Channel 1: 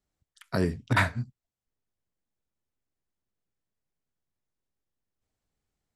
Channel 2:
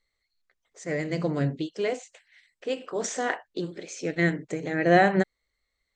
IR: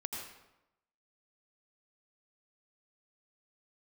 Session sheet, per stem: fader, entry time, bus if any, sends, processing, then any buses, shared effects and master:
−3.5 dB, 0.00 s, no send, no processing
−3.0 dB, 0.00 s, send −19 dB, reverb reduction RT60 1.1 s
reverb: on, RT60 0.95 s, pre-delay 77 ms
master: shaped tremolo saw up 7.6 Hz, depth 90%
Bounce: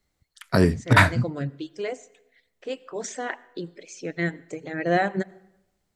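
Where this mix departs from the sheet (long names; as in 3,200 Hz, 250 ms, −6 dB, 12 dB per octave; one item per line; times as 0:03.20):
stem 1 −3.5 dB → +8.0 dB
master: missing shaped tremolo saw up 7.6 Hz, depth 90%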